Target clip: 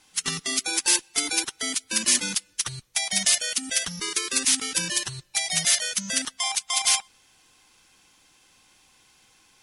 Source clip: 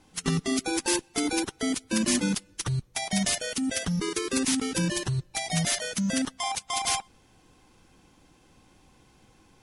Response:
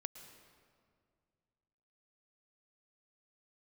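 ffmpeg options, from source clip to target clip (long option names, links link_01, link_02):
-af "tiltshelf=frequency=940:gain=-10,volume=-2dB"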